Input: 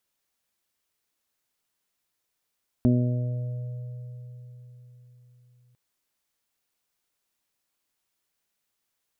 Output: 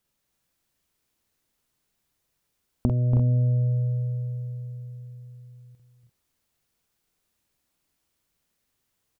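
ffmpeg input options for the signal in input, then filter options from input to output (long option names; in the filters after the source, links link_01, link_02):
-f lavfi -i "aevalsrc='0.1*pow(10,-3*t/4.48)*sin(2*PI*123*t)+0.15*pow(10,-3*t/1.03)*sin(2*PI*246*t)+0.0355*pow(10,-3*t/1.21)*sin(2*PI*369*t)+0.0141*pow(10,-3*t/3.65)*sin(2*PI*492*t)+0.0224*pow(10,-3*t/2.68)*sin(2*PI*615*t)':duration=2.9:sample_rate=44100"
-af "lowshelf=frequency=290:gain=11.5,acompressor=threshold=-21dB:ratio=6,aecho=1:1:47|284|319|345:0.596|0.447|0.447|0.299"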